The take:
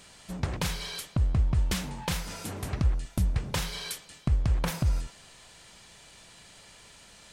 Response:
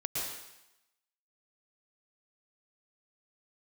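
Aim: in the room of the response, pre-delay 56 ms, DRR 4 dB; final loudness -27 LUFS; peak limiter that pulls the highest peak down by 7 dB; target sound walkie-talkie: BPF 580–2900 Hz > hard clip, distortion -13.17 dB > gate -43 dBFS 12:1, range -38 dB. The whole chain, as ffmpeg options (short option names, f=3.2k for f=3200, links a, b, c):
-filter_complex "[0:a]alimiter=limit=-22dB:level=0:latency=1,asplit=2[a][b];[1:a]atrim=start_sample=2205,adelay=56[c];[b][c]afir=irnorm=-1:irlink=0,volume=-8.5dB[d];[a][d]amix=inputs=2:normalize=0,highpass=580,lowpass=2.9k,asoftclip=type=hard:threshold=-36dB,agate=range=-38dB:threshold=-43dB:ratio=12,volume=16dB"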